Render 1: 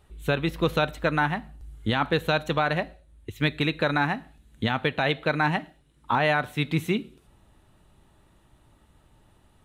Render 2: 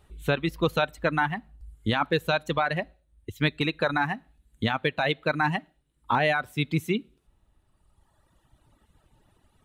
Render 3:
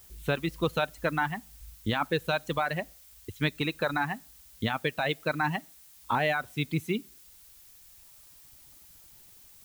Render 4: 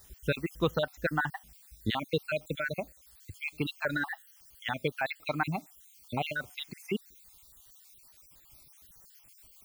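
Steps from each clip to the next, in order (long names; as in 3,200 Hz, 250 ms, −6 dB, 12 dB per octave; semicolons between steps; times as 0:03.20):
reverb reduction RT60 2 s
background noise blue −51 dBFS; level −3.5 dB
time-frequency cells dropped at random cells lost 52%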